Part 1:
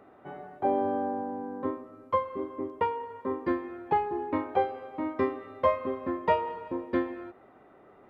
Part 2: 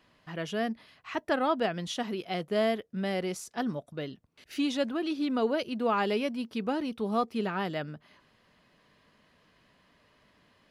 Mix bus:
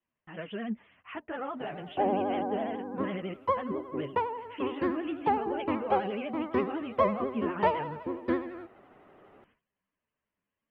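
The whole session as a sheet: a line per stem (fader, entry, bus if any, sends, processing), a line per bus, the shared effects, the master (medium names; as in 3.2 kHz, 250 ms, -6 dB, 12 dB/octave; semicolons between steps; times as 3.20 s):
-1.0 dB, 1.35 s, no send, none
0.0 dB, 0.00 s, no send, steep low-pass 3.1 kHz 96 dB/octave; peak limiter -25.5 dBFS, peak gain reduction 9 dB; three-phase chorus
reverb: none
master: vibrato 12 Hz 93 cents; gate with hold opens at -52 dBFS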